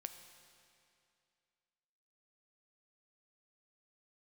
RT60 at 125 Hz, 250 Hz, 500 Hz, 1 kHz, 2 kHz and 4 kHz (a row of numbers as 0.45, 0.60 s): 2.5, 2.5, 2.5, 2.5, 2.4, 2.3 s